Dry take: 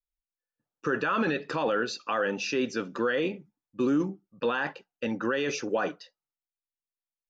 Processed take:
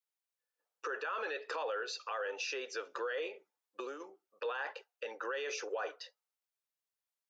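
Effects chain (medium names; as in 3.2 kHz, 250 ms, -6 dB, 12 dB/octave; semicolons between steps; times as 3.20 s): compression 4:1, threshold -35 dBFS, peak gain reduction 11.5 dB; Chebyshev high-pass 440 Hz, order 4; peak limiter -31.5 dBFS, peak gain reduction 8 dB; trim +2.5 dB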